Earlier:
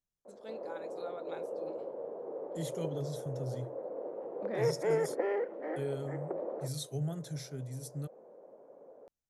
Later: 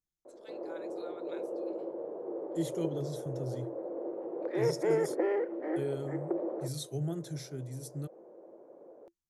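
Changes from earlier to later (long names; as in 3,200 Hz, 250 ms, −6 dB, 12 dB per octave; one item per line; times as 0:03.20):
first voice: add high-pass filter 1,200 Hz
master: add parametric band 340 Hz +14 dB 0.21 octaves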